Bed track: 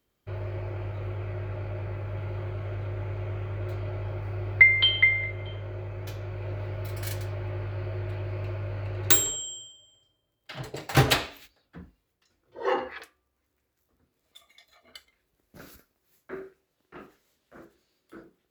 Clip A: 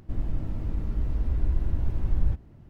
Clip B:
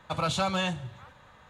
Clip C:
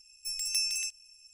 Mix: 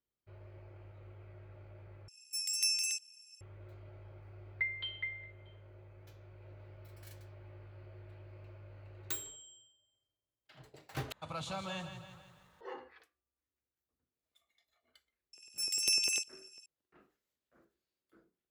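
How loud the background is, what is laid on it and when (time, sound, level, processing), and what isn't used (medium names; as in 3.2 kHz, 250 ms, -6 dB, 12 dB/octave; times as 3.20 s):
bed track -19.5 dB
2.08 s: replace with C -1.5 dB + high-pass 800 Hz 6 dB/octave
11.12 s: replace with B -13 dB + bit-crushed delay 165 ms, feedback 55%, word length 9-bit, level -9 dB
15.33 s: add C -1 dB + LFO high-pass square 10 Hz 400–3000 Hz
not used: A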